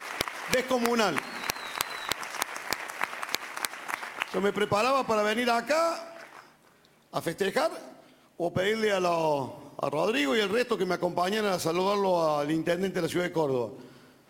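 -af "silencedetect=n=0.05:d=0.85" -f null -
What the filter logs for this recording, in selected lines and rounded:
silence_start: 5.95
silence_end: 7.16 | silence_duration: 1.21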